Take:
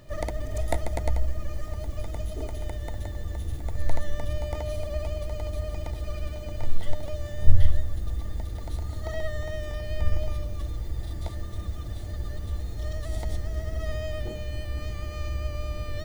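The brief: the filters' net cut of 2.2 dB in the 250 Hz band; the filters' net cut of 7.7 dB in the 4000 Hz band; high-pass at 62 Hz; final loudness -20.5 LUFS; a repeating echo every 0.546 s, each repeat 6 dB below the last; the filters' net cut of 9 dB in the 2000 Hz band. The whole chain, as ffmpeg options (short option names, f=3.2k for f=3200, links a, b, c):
-af "highpass=62,equalizer=f=250:t=o:g=-3,equalizer=f=2k:t=o:g=-8.5,equalizer=f=4k:t=o:g=-7,aecho=1:1:546|1092|1638|2184|2730|3276:0.501|0.251|0.125|0.0626|0.0313|0.0157,volume=14dB"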